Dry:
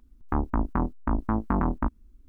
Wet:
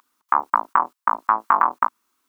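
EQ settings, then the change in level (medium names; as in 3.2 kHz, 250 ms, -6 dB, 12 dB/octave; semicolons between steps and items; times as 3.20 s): high-pass 770 Hz 12 dB/octave; peaking EQ 1.1 kHz +13.5 dB 0.94 oct; treble shelf 2.2 kHz +10.5 dB; +3.5 dB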